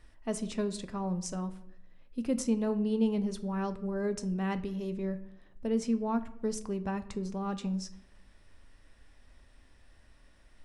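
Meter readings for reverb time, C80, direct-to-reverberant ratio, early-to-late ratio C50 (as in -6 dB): 0.75 s, 17.5 dB, 10.0 dB, 15.0 dB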